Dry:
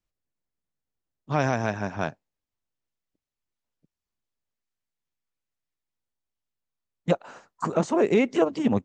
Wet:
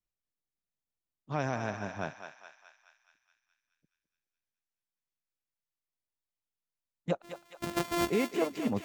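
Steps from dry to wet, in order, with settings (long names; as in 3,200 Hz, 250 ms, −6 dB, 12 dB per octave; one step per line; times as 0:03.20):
0:07.22–0:08.10: samples sorted by size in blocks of 128 samples
feedback echo with a high-pass in the loop 211 ms, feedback 65%, high-pass 910 Hz, level −6 dB
level −8.5 dB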